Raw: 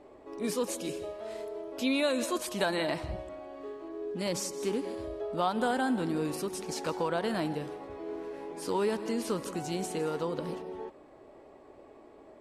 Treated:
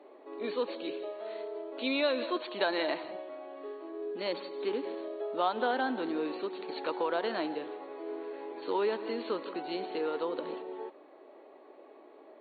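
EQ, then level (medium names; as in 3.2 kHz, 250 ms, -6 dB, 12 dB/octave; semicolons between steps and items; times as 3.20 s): high-pass 290 Hz 24 dB/octave; brick-wall FIR low-pass 4.5 kHz; 0.0 dB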